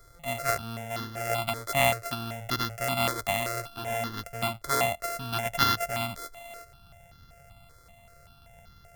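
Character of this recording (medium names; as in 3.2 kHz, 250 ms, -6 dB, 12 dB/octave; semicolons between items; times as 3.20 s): a buzz of ramps at a fixed pitch in blocks of 64 samples; notches that jump at a steady rate 5.2 Hz 740–2400 Hz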